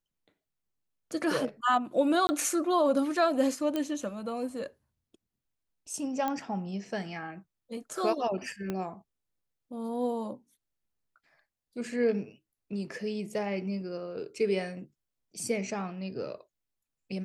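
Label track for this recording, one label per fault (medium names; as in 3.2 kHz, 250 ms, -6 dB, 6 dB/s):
2.270000	2.290000	dropout 20 ms
3.760000	3.760000	pop -18 dBFS
6.280000	6.280000	pop -18 dBFS
8.700000	8.700000	pop -20 dBFS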